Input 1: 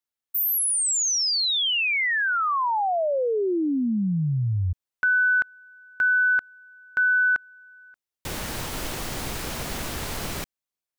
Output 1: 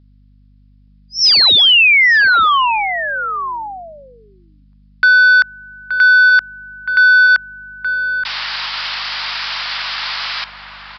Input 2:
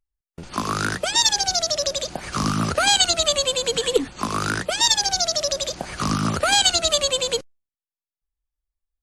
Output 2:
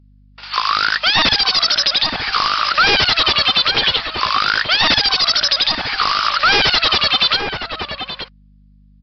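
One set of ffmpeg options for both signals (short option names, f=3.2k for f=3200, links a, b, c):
-filter_complex "[0:a]highpass=f=1k:w=0.5412,highpass=f=1k:w=1.3066,highshelf=f=4.3k:g=10,aresample=11025,aeval=exprs='0.133*(abs(mod(val(0)/0.133+3,4)-2)-1)':c=same,aresample=44100,aeval=exprs='val(0)+0.00112*(sin(2*PI*50*n/s)+sin(2*PI*2*50*n/s)/2+sin(2*PI*3*50*n/s)/3+sin(2*PI*4*50*n/s)/4+sin(2*PI*5*50*n/s)/5)':c=same,asplit=2[a][b];[b]adelay=874.6,volume=-7dB,highshelf=f=4k:g=-19.7[c];[a][c]amix=inputs=2:normalize=0,alimiter=level_in=16.5dB:limit=-1dB:release=50:level=0:latency=1,volume=-4.5dB"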